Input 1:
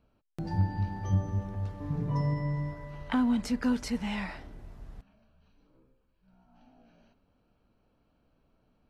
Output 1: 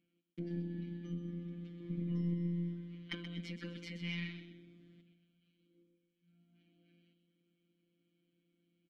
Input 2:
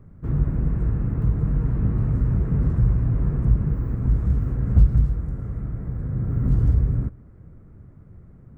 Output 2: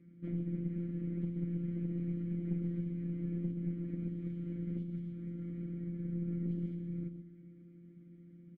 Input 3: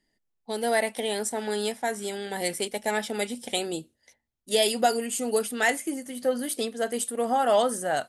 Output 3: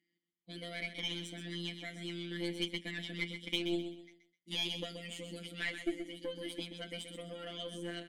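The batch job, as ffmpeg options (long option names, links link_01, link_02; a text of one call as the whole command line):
ffmpeg -i in.wav -filter_complex "[0:a]acompressor=threshold=-25dB:ratio=3,afftfilt=real='hypot(re,im)*cos(PI*b)':imag='0':win_size=1024:overlap=0.75,asplit=3[link_01][link_02][link_03];[link_01]bandpass=frequency=270:width_type=q:width=8,volume=0dB[link_04];[link_02]bandpass=frequency=2290:width_type=q:width=8,volume=-6dB[link_05];[link_03]bandpass=frequency=3010:width_type=q:width=8,volume=-9dB[link_06];[link_04][link_05][link_06]amix=inputs=3:normalize=0,aeval=exprs='0.0335*(cos(1*acos(clip(val(0)/0.0335,-1,1)))-cos(1*PI/2))+0.00133*(cos(4*acos(clip(val(0)/0.0335,-1,1)))-cos(4*PI/2))+0.00119*(cos(8*acos(clip(val(0)/0.0335,-1,1)))-cos(8*PI/2))':channel_layout=same,aecho=1:1:128|256|384|512:0.355|0.11|0.0341|0.0106,volume=11dB" out.wav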